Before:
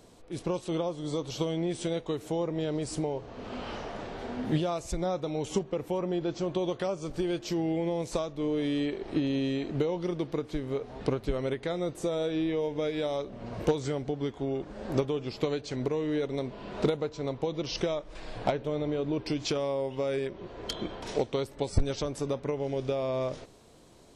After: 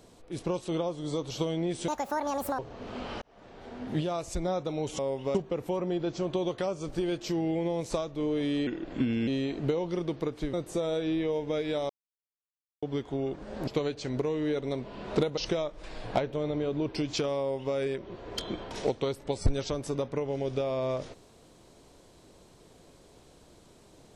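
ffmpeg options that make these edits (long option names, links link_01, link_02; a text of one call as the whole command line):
ffmpeg -i in.wav -filter_complex "[0:a]asplit=13[link_01][link_02][link_03][link_04][link_05][link_06][link_07][link_08][link_09][link_10][link_11][link_12][link_13];[link_01]atrim=end=1.884[link_14];[link_02]atrim=start=1.88:end=3.16,asetpts=PTS-STARTPTS,asetrate=79821,aresample=44100[link_15];[link_03]atrim=start=3.156:end=3.79,asetpts=PTS-STARTPTS,afade=type=out:start_time=0.63:duration=0.004:curve=hsin[link_16];[link_04]atrim=start=3.79:end=5.562,asetpts=PTS-STARTPTS,afade=type=in:duration=1.04[link_17];[link_05]atrim=start=19.708:end=20.072[link_18];[link_06]atrim=start=5.558:end=8.884[link_19];[link_07]atrim=start=8.88:end=9.39,asetpts=PTS-STARTPTS,asetrate=37044,aresample=44100[link_20];[link_08]atrim=start=9.386:end=10.652[link_21];[link_09]atrim=start=11.818:end=13.18,asetpts=PTS-STARTPTS,afade=type=out:start_time=1.358:duration=0.004:curve=hsin[link_22];[link_10]atrim=start=13.18:end=14.11,asetpts=PTS-STARTPTS,volume=0[link_23];[link_11]atrim=start=14.11:end=14.962,asetpts=PTS-STARTPTS,afade=type=in:duration=0.004:curve=hsin[link_24];[link_12]atrim=start=15.338:end=17.042[link_25];[link_13]atrim=start=17.688[link_26];[link_14][link_15]acrossfade=duration=0.004:curve1=hsin:curve2=hsin[link_27];[link_16][link_17]concat=n=2:v=0:a=1[link_28];[link_27][link_28]acrossfade=duration=0.004:curve1=hsin:curve2=hsin[link_29];[link_29][link_18]acrossfade=duration=0.004:curve1=hsin:curve2=hsin[link_30];[link_30][link_19]acrossfade=duration=0.004:curve1=hsin:curve2=hsin[link_31];[link_31][link_20]acrossfade=duration=0.004:curve1=hsin:curve2=hsin[link_32];[link_32][link_21]acrossfade=duration=0.004:curve1=hsin:curve2=hsin[link_33];[link_22][link_23][link_24]concat=n=3:v=0:a=1[link_34];[link_33][link_34]acrossfade=duration=0.004:curve1=hsin:curve2=hsin[link_35];[link_35][link_25]acrossfade=duration=0.004:curve1=hsin:curve2=hsin[link_36];[link_36][link_26]acrossfade=duration=0.004:curve1=hsin:curve2=hsin" out.wav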